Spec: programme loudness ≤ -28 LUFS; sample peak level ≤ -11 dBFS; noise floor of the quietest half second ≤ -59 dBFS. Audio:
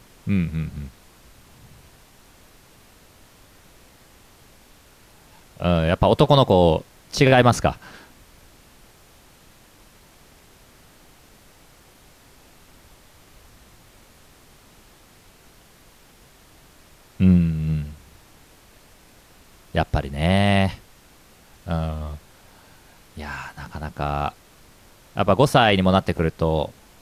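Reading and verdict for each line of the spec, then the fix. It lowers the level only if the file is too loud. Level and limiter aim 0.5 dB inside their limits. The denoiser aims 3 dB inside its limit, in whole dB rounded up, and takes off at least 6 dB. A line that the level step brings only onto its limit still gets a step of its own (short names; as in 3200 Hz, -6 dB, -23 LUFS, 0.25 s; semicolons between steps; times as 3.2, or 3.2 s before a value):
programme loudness -20.5 LUFS: fail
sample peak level -4.0 dBFS: fail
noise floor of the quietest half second -52 dBFS: fail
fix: gain -8 dB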